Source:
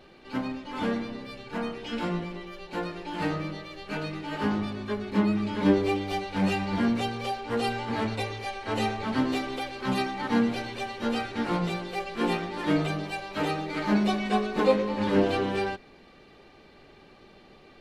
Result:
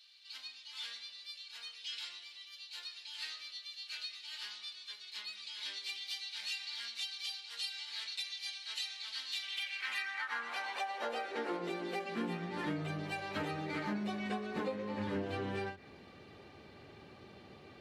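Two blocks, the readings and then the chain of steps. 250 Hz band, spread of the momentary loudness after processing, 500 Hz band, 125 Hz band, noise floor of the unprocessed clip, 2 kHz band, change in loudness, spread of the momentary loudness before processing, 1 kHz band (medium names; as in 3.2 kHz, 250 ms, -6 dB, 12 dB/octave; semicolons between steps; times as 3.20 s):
-16.5 dB, 14 LU, -14.5 dB, -14.0 dB, -54 dBFS, -7.0 dB, -11.0 dB, 10 LU, -12.5 dB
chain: high-pass sweep 4 kHz -> 89 Hz, 9.28–12.94 s; dynamic bell 1.8 kHz, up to +4 dB, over -50 dBFS, Q 2; compression 6:1, threshold -33 dBFS, peak gain reduction 16.5 dB; endings held to a fixed fall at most 180 dB/s; trim -2.5 dB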